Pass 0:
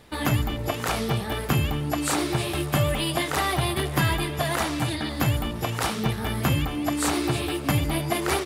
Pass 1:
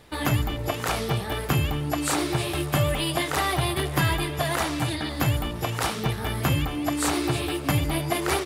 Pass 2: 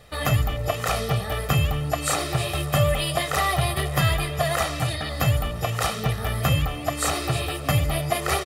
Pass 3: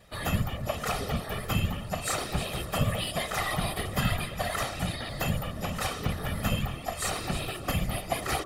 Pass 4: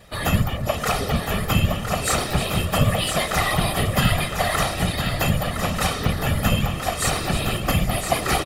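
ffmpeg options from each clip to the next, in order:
-af "equalizer=f=220:t=o:w=0.26:g=-5.5"
-af "aecho=1:1:1.6:0.67"
-af "bandreject=f=48.86:t=h:w=4,bandreject=f=97.72:t=h:w=4,bandreject=f=146.58:t=h:w=4,bandreject=f=195.44:t=h:w=4,bandreject=f=244.3:t=h:w=4,bandreject=f=293.16:t=h:w=4,bandreject=f=342.02:t=h:w=4,bandreject=f=390.88:t=h:w=4,bandreject=f=439.74:t=h:w=4,bandreject=f=488.6:t=h:w=4,bandreject=f=537.46:t=h:w=4,bandreject=f=586.32:t=h:w=4,bandreject=f=635.18:t=h:w=4,bandreject=f=684.04:t=h:w=4,bandreject=f=732.9:t=h:w=4,bandreject=f=781.76:t=h:w=4,bandreject=f=830.62:t=h:w=4,bandreject=f=879.48:t=h:w=4,bandreject=f=928.34:t=h:w=4,bandreject=f=977.2:t=h:w=4,bandreject=f=1026.06:t=h:w=4,bandreject=f=1074.92:t=h:w=4,bandreject=f=1123.78:t=h:w=4,bandreject=f=1172.64:t=h:w=4,bandreject=f=1221.5:t=h:w=4,bandreject=f=1270.36:t=h:w=4,bandreject=f=1319.22:t=h:w=4,bandreject=f=1368.08:t=h:w=4,bandreject=f=1416.94:t=h:w=4,bandreject=f=1465.8:t=h:w=4,bandreject=f=1514.66:t=h:w=4,afftfilt=real='hypot(re,im)*cos(2*PI*random(0))':imag='hypot(re,im)*sin(2*PI*random(1))':win_size=512:overlap=0.75"
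-af "aecho=1:1:1012:0.447,volume=2.51"

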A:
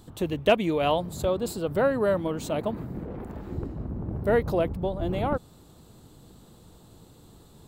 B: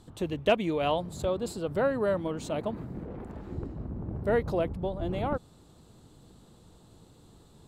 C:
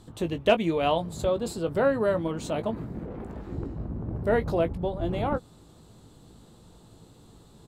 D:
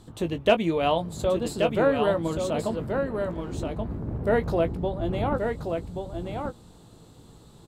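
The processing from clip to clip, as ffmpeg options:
-af "lowpass=10000,volume=0.668"
-filter_complex "[0:a]asplit=2[s0][s1];[s1]adelay=18,volume=0.335[s2];[s0][s2]amix=inputs=2:normalize=0,volume=1.33"
-af "aecho=1:1:1129:0.531,volume=1.12"

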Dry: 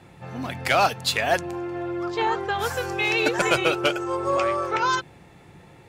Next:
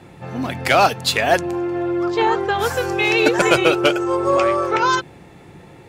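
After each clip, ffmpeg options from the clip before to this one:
-af "equalizer=f=330:t=o:w=1.6:g=4,volume=1.68"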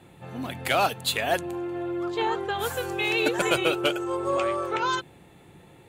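-af "aexciter=amount=1.5:drive=2.5:freq=2900,volume=0.355"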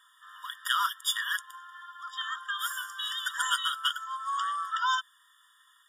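-af "asubboost=boost=7:cutoff=240,afftfilt=real='re*eq(mod(floor(b*sr/1024/950),2),1)':imag='im*eq(mod(floor(b*sr/1024/950),2),1)':win_size=1024:overlap=0.75,volume=1.26"

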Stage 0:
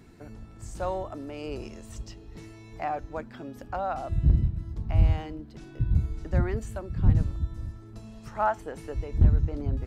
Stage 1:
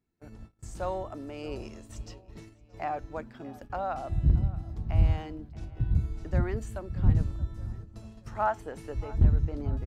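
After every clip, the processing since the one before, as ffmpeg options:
-filter_complex "[0:a]agate=range=0.0447:threshold=0.00708:ratio=16:detection=peak,asplit=2[s0][s1];[s1]adelay=627,lowpass=f=3400:p=1,volume=0.106,asplit=2[s2][s3];[s3]adelay=627,lowpass=f=3400:p=1,volume=0.48,asplit=2[s4][s5];[s5]adelay=627,lowpass=f=3400:p=1,volume=0.48,asplit=2[s6][s7];[s7]adelay=627,lowpass=f=3400:p=1,volume=0.48[s8];[s0][s2][s4][s6][s8]amix=inputs=5:normalize=0,volume=0.794"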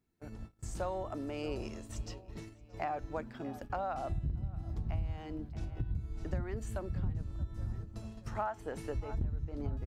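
-af "acompressor=threshold=0.0224:ratio=8,volume=1.12"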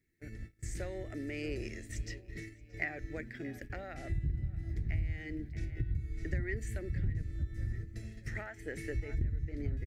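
-af "firequalizer=gain_entry='entry(140,0);entry(200,-6);entry(340,1);entry(1000,-25);entry(1900,14);entry(2800,-3);entry(5800,0)':delay=0.05:min_phase=1,volume=1.19"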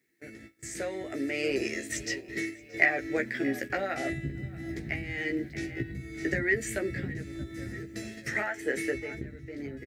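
-filter_complex "[0:a]highpass=260,dynaudnorm=f=300:g=9:m=2,asplit=2[s0][s1];[s1]adelay=15,volume=0.596[s2];[s0][s2]amix=inputs=2:normalize=0,volume=2.11"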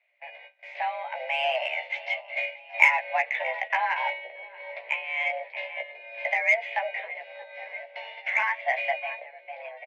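-filter_complex "[0:a]highpass=f=450:t=q:w=0.5412,highpass=f=450:t=q:w=1.307,lowpass=f=3100:t=q:w=0.5176,lowpass=f=3100:t=q:w=0.7071,lowpass=f=3100:t=q:w=1.932,afreqshift=240,asplit=2[s0][s1];[s1]asoftclip=type=tanh:threshold=0.0562,volume=0.398[s2];[s0][s2]amix=inputs=2:normalize=0,volume=1.58"

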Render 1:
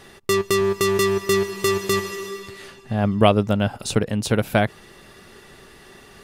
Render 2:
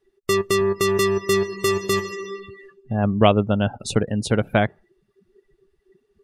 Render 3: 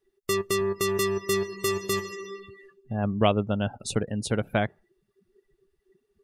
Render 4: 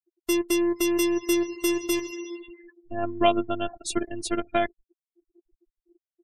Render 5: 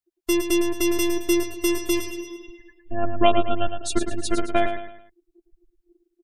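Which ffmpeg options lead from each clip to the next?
-af "afftdn=nr=32:nf=-33"
-af "highshelf=f=7200:g=7,volume=0.473"
-af "afftfilt=real='re*gte(hypot(re,im),0.00631)':imag='im*gte(hypot(re,im),0.00631)':win_size=1024:overlap=0.75,afftfilt=real='hypot(re,im)*cos(PI*b)':imag='0':win_size=512:overlap=0.75,volume=1.78"
-filter_complex "[0:a]lowshelf=f=72:g=10.5,asplit=2[s0][s1];[s1]aecho=0:1:109|218|327|436:0.398|0.155|0.0606|0.0236[s2];[s0][s2]amix=inputs=2:normalize=0,volume=1.26"

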